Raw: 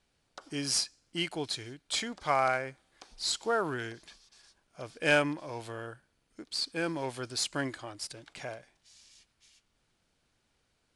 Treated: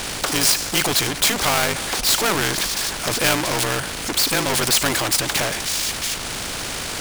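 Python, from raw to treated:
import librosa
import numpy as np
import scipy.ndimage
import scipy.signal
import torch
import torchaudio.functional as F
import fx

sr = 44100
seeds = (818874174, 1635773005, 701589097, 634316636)

y = fx.power_curve(x, sr, exponent=0.5)
y = fx.stretch_grains(y, sr, factor=0.64, grain_ms=38.0)
y = fx.spectral_comp(y, sr, ratio=2.0)
y = y * librosa.db_to_amplitude(5.0)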